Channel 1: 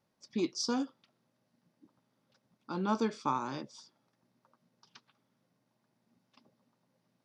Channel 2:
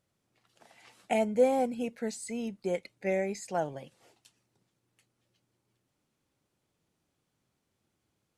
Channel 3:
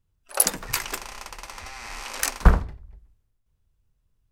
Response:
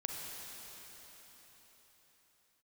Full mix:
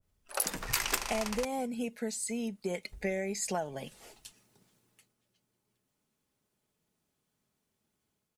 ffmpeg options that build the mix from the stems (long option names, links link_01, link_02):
-filter_complex "[1:a]highshelf=frequency=10000:gain=10,acontrast=76,volume=-4dB,afade=type=in:start_time=2.61:duration=0.59:silence=0.421697,afade=type=out:start_time=4.74:duration=0.44:silence=0.316228[link_01];[2:a]alimiter=limit=-13.5dB:level=0:latency=1:release=96,volume=-5dB,asplit=3[link_02][link_03][link_04];[link_02]atrim=end=1.45,asetpts=PTS-STARTPTS,afade=type=out:start_time=1.446:duration=0.004:curve=hsin[link_05];[link_03]atrim=start=1.45:end=2.92,asetpts=PTS-STARTPTS,volume=0[link_06];[link_04]atrim=start=2.92,asetpts=PTS-STARTPTS,afade=type=in:duration=0.004:curve=hsin[link_07];[link_05][link_06][link_07]concat=n=3:v=0:a=1[link_08];[link_01]aecho=1:1:4.7:0.33,acompressor=threshold=-34dB:ratio=12,volume=0dB[link_09];[link_08][link_09]amix=inputs=2:normalize=0,dynaudnorm=framelen=450:gausssize=3:maxgain=4dB,adynamicequalizer=threshold=0.00355:dfrequency=1600:dqfactor=0.7:tfrequency=1600:tqfactor=0.7:attack=5:release=100:ratio=0.375:range=1.5:mode=boostabove:tftype=highshelf"